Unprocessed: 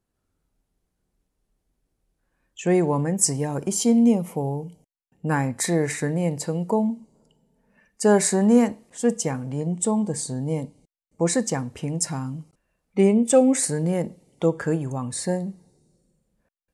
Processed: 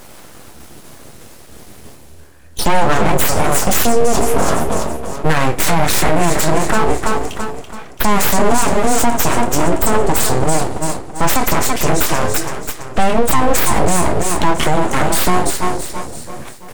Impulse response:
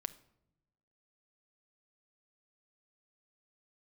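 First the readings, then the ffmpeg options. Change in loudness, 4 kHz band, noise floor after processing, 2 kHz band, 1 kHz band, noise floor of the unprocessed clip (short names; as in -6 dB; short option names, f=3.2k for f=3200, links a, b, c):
+6.5 dB, +14.5 dB, -38 dBFS, +15.0 dB, +16.5 dB, -78 dBFS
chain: -filter_complex "[0:a]asoftclip=type=tanh:threshold=-9.5dB[a];[1:a]atrim=start_sample=2205,atrim=end_sample=3528[b];[a][b]afir=irnorm=-1:irlink=0,areverse,acompressor=mode=upward:threshold=-34dB:ratio=2.5,areverse,aecho=1:1:333|666|999|1332|1665:0.355|0.156|0.0687|0.0302|0.0133,asubboost=boost=4.5:cutoff=71,highpass=f=47:w=0.5412,highpass=f=47:w=1.3066,flanger=delay=6.8:depth=6.8:regen=-43:speed=0.38:shape=triangular,equalizer=f=98:w=1.4:g=-12,asplit=2[c][d];[d]adelay=26,volume=-10.5dB[e];[c][e]amix=inputs=2:normalize=0,acompressor=threshold=-28dB:ratio=6,aeval=exprs='abs(val(0))':c=same,alimiter=level_in=27dB:limit=-1dB:release=50:level=0:latency=1,volume=-1dB"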